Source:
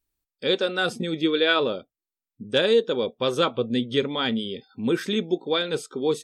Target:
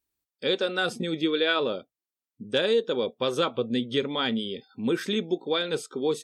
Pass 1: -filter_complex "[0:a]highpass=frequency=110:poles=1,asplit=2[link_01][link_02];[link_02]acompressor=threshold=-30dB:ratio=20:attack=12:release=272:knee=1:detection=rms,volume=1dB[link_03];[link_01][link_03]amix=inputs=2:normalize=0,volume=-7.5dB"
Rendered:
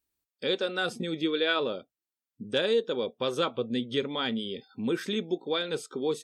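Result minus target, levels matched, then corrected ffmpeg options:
downward compressor: peak gain reduction +9 dB
-filter_complex "[0:a]highpass=frequency=110:poles=1,asplit=2[link_01][link_02];[link_02]acompressor=threshold=-20.5dB:ratio=20:attack=12:release=272:knee=1:detection=rms,volume=1dB[link_03];[link_01][link_03]amix=inputs=2:normalize=0,volume=-7.5dB"

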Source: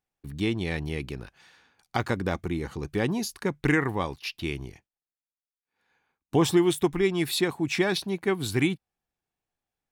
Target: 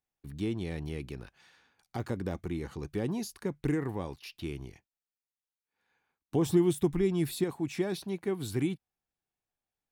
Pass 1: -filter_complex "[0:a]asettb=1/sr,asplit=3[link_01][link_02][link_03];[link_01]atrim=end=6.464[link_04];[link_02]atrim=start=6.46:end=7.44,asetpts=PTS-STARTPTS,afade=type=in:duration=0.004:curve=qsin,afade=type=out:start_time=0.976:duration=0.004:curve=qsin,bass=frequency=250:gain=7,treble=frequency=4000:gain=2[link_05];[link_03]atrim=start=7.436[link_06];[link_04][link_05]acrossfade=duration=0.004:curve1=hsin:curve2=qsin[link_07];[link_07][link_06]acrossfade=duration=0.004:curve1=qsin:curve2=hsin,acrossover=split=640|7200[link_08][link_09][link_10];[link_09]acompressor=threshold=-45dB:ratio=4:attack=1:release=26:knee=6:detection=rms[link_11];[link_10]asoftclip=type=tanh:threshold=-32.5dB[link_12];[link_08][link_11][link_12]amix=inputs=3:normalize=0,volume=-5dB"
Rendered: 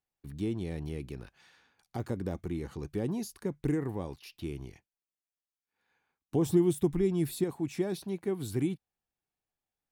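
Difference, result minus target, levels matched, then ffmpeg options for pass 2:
downward compressor: peak gain reduction +5 dB
-filter_complex "[0:a]asettb=1/sr,asplit=3[link_01][link_02][link_03];[link_01]atrim=end=6.464[link_04];[link_02]atrim=start=6.46:end=7.44,asetpts=PTS-STARTPTS,afade=type=in:duration=0.004:curve=qsin,afade=type=out:start_time=0.976:duration=0.004:curve=qsin,bass=frequency=250:gain=7,treble=frequency=4000:gain=2[link_05];[link_03]atrim=start=7.436[link_06];[link_04][link_05]acrossfade=duration=0.004:curve1=hsin:curve2=qsin[link_07];[link_07][link_06]acrossfade=duration=0.004:curve1=qsin:curve2=hsin,acrossover=split=640|7200[link_08][link_09][link_10];[link_09]acompressor=threshold=-38dB:ratio=4:attack=1:release=26:knee=6:detection=rms[link_11];[link_10]asoftclip=type=tanh:threshold=-32.5dB[link_12];[link_08][link_11][link_12]amix=inputs=3:normalize=0,volume=-5dB"

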